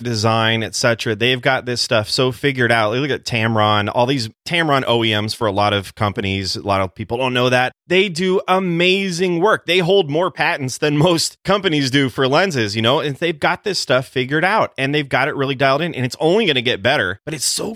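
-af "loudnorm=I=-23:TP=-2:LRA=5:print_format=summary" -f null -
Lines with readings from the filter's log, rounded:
Input Integrated:    -17.0 LUFS
Input True Peak:      -2.0 dBTP
Input LRA:             1.4 LU
Input Threshold:     -27.0 LUFS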